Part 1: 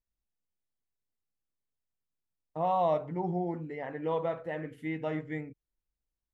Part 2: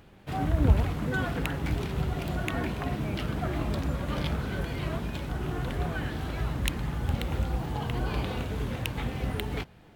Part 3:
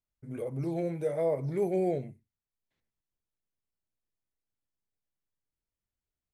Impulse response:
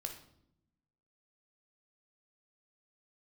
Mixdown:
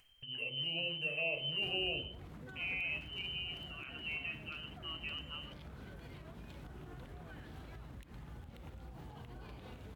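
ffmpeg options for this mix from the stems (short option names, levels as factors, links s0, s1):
-filter_complex "[0:a]acrusher=bits=7:mix=0:aa=0.000001,volume=0.299,asplit=2[s0][s1];[s1]volume=0.0708[s2];[1:a]acompressor=threshold=0.0316:ratio=6,alimiter=level_in=2.37:limit=0.0631:level=0:latency=1:release=297,volume=0.422,adelay=1350,volume=0.282[s3];[2:a]equalizer=f=2200:t=o:w=0.77:g=-5,volume=0.531,asplit=2[s4][s5];[s5]volume=0.422[s6];[s0][s4]amix=inputs=2:normalize=0,lowpass=f=2700:t=q:w=0.5098,lowpass=f=2700:t=q:w=0.6013,lowpass=f=2700:t=q:w=0.9,lowpass=f=2700:t=q:w=2.563,afreqshift=-3200,acompressor=threshold=0.02:ratio=6,volume=1[s7];[3:a]atrim=start_sample=2205[s8];[s2][s6]amix=inputs=2:normalize=0[s9];[s9][s8]afir=irnorm=-1:irlink=0[s10];[s3][s7][s10]amix=inputs=3:normalize=0,acompressor=mode=upward:threshold=0.00562:ratio=2.5"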